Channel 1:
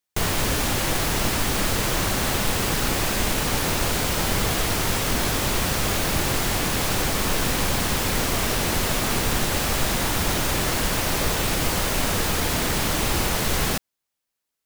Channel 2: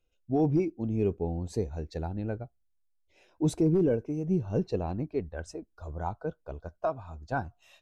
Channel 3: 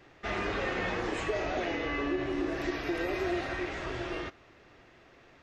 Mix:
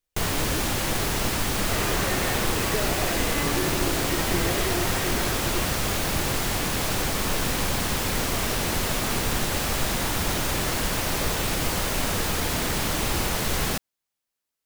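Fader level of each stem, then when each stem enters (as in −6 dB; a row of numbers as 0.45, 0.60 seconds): −2.5, −12.5, +2.0 decibels; 0.00, 0.00, 1.45 seconds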